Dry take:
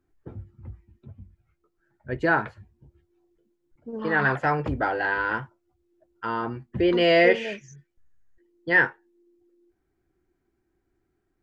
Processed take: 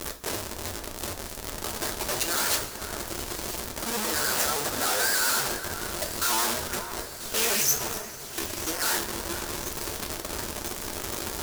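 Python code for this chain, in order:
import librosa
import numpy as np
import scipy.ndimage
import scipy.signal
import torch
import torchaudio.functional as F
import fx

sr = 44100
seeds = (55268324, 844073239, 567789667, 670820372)

y = x + 0.5 * 10.0 ** (-24.5 / 20.0) * np.diff(np.sign(x), prepend=np.sign(x[:1]))
y = fx.over_compress(y, sr, threshold_db=-27.0, ratio=-1.0)
y = fx.peak_eq(y, sr, hz=1400.0, db=10.0, octaves=0.7)
y = fx.schmitt(y, sr, flips_db=-23.0)
y = fx.bass_treble(y, sr, bass_db=-13, treble_db=12)
y = fx.echo_alternate(y, sr, ms=494, hz=1900.0, feedback_pct=78, wet_db=-11.0)
y = fx.rev_double_slope(y, sr, seeds[0], early_s=0.33, late_s=2.8, knee_db=-16, drr_db=3.0)
y = fx.vibrato_shape(y, sr, shape='saw_up', rate_hz=6.8, depth_cents=100.0)
y = y * 10.0 ** (-2.0 / 20.0)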